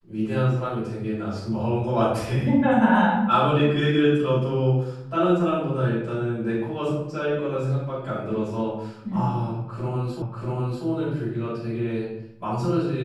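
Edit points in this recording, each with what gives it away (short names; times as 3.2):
10.22 repeat of the last 0.64 s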